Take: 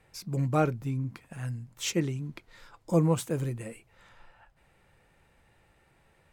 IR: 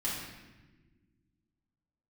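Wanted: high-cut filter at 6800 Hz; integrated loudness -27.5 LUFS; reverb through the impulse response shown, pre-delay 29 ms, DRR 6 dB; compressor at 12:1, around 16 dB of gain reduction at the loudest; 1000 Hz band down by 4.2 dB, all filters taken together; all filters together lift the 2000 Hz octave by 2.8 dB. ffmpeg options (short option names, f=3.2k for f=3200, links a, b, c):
-filter_complex "[0:a]lowpass=6.8k,equalizer=f=1k:t=o:g=-8,equalizer=f=2k:t=o:g=6,acompressor=threshold=-36dB:ratio=12,asplit=2[a][b];[1:a]atrim=start_sample=2205,adelay=29[c];[b][c]afir=irnorm=-1:irlink=0,volume=-11dB[d];[a][d]amix=inputs=2:normalize=0,volume=12.5dB"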